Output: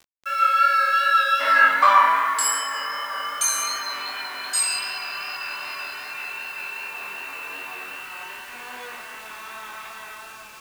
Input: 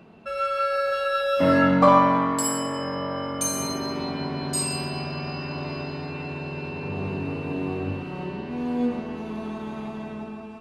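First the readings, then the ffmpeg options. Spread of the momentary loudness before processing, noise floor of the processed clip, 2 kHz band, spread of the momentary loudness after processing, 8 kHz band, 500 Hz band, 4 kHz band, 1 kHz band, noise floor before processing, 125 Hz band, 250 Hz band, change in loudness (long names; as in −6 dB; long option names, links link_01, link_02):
15 LU, −41 dBFS, +10.0 dB, 20 LU, +5.5 dB, −12.0 dB, +6.0 dB, +5.0 dB, −37 dBFS, below −30 dB, −25.0 dB, +4.0 dB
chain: -af "highpass=frequency=1500:width_type=q:width=1.8,acrusher=bits=7:mix=0:aa=0.000001,flanger=delay=22.5:depth=3.9:speed=2.6,volume=8dB"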